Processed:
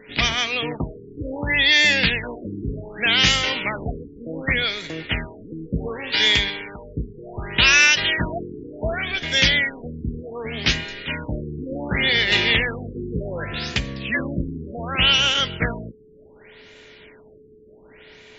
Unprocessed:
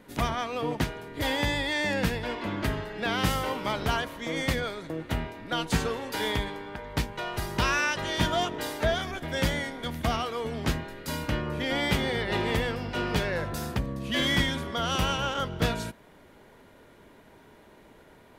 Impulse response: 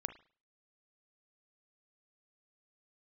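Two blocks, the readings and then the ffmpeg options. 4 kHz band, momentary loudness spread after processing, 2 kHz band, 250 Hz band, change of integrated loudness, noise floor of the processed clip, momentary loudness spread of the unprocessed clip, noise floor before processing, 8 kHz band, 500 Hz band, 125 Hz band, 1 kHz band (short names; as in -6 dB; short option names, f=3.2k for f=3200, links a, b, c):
+12.5 dB, 17 LU, +11.0 dB, +2.0 dB, +9.5 dB, -49 dBFS, 7 LU, -55 dBFS, +8.5 dB, +1.0 dB, +2.5 dB, -0.5 dB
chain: -af "aeval=exprs='val(0)+0.00316*sin(2*PI*430*n/s)':c=same,highshelf=f=1.6k:t=q:w=1.5:g=12.5,afftfilt=real='re*lt(b*sr/1024,450*pow(7700/450,0.5+0.5*sin(2*PI*0.67*pts/sr)))':imag='im*lt(b*sr/1024,450*pow(7700/450,0.5+0.5*sin(2*PI*0.67*pts/sr)))':win_size=1024:overlap=0.75,volume=2.5dB"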